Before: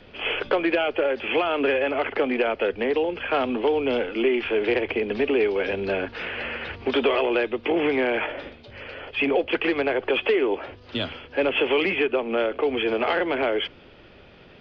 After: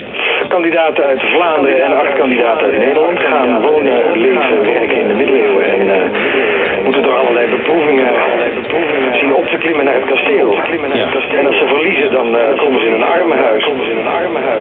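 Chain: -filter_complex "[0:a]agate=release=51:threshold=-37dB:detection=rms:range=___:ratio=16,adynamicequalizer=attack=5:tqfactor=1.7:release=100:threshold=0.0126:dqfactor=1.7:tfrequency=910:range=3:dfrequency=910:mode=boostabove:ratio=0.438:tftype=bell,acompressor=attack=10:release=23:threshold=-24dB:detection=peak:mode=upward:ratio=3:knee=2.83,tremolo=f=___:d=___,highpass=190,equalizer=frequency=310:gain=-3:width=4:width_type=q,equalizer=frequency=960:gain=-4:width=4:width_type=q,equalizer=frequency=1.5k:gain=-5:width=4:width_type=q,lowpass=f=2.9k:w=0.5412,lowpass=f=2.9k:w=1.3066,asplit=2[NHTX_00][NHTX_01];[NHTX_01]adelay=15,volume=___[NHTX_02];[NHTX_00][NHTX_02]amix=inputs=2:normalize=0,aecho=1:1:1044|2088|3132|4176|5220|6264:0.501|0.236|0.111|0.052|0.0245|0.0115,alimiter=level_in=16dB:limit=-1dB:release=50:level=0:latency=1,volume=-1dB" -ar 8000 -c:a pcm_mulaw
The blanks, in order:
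-12dB, 170, 0.462, -10dB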